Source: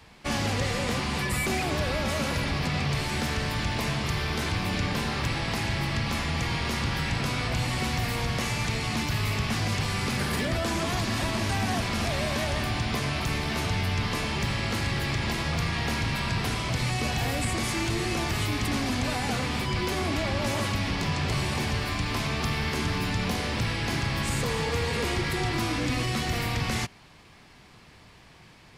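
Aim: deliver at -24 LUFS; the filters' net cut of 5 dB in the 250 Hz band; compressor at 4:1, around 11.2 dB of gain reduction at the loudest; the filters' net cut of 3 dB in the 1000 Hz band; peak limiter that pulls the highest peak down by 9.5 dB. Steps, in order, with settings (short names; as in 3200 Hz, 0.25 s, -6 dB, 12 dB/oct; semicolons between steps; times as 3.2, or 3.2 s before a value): bell 250 Hz -7 dB; bell 1000 Hz -3.5 dB; compressor 4:1, threshold -39 dBFS; gain +21 dB; limiter -16 dBFS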